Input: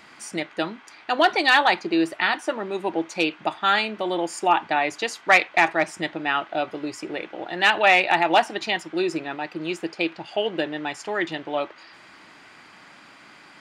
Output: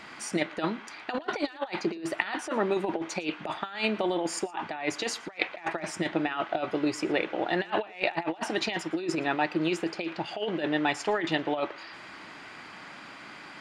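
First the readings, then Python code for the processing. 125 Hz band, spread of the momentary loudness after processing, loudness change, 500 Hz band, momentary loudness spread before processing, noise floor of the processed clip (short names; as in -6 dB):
+1.0 dB, 16 LU, -7.5 dB, -5.0 dB, 14 LU, -46 dBFS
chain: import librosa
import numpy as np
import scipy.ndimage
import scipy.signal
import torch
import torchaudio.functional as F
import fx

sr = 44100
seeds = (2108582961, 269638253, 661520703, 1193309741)

y = fx.over_compress(x, sr, threshold_db=-27.0, ratio=-0.5)
y = fx.high_shelf(y, sr, hz=7800.0, db=-8.5)
y = y + 10.0 ** (-23.0 / 20.0) * np.pad(y, (int(116 * sr / 1000.0), 0))[:len(y)]
y = F.gain(torch.from_numpy(y), -1.5).numpy()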